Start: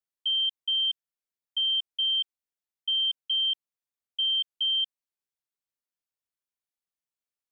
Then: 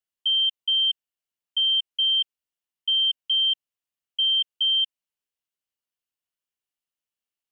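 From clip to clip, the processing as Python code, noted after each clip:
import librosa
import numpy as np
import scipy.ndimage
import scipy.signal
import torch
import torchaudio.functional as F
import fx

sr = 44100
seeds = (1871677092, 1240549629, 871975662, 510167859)

y = fx.peak_eq(x, sr, hz=2900.0, db=8.5, octaves=0.24)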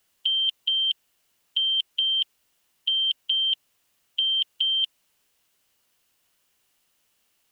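y = fx.spectral_comp(x, sr, ratio=2.0)
y = y * 10.0 ** (6.0 / 20.0)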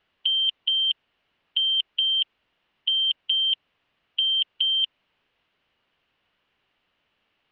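y = scipy.signal.sosfilt(scipy.signal.butter(4, 3200.0, 'lowpass', fs=sr, output='sos'), x)
y = y * 10.0 ** (3.5 / 20.0)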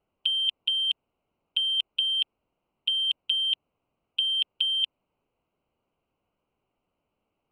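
y = fx.wiener(x, sr, points=25)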